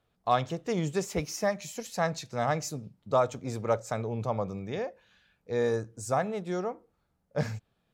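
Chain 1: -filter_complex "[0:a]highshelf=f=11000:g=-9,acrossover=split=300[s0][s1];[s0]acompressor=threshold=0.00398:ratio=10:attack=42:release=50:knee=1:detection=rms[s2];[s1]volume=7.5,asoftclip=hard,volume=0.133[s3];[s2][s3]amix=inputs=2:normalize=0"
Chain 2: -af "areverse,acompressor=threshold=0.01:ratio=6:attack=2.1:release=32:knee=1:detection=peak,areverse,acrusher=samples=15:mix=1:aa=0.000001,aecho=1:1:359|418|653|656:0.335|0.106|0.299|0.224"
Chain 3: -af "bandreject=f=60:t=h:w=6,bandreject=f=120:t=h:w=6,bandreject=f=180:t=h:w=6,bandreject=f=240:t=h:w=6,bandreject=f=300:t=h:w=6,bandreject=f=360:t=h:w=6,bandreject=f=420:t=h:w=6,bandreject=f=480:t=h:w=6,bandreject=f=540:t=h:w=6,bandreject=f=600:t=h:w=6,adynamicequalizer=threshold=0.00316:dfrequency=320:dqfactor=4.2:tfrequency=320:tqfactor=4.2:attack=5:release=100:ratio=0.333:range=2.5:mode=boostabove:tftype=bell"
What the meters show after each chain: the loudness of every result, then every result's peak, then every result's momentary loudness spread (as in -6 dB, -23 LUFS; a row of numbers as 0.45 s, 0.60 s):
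-33.0 LUFS, -42.5 LUFS, -32.0 LUFS; -17.0 dBFS, -29.5 dBFS, -13.0 dBFS; 9 LU, 5 LU, 9 LU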